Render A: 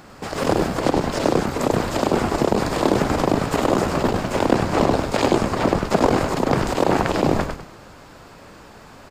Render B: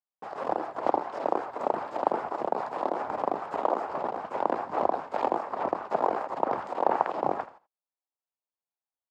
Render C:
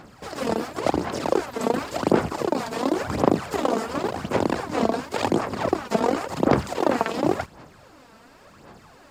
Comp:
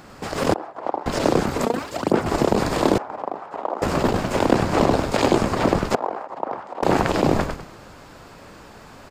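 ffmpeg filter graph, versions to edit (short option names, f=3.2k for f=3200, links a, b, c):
-filter_complex "[1:a]asplit=3[a][b][c];[0:a]asplit=5[d][e][f][g][h];[d]atrim=end=0.542[i];[a]atrim=start=0.538:end=1.062[j];[e]atrim=start=1.058:end=1.652[k];[2:a]atrim=start=1.648:end=2.262[l];[f]atrim=start=2.258:end=2.982[m];[b]atrim=start=2.978:end=3.822[n];[g]atrim=start=3.818:end=5.952[o];[c]atrim=start=5.948:end=6.832[p];[h]atrim=start=6.828[q];[i][j]acrossfade=d=0.004:c1=hsin:c2=hsin[r];[r][k]acrossfade=d=0.004:c1=hsin:c2=hsin[s];[s][l]acrossfade=d=0.004:c1=hsin:c2=hsin[t];[t][m]acrossfade=d=0.004:c1=hsin:c2=hsin[u];[u][n]acrossfade=d=0.004:c1=hsin:c2=hsin[v];[v][o]acrossfade=d=0.004:c1=hsin:c2=hsin[w];[w][p]acrossfade=d=0.004:c1=hsin:c2=hsin[x];[x][q]acrossfade=d=0.004:c1=hsin:c2=hsin"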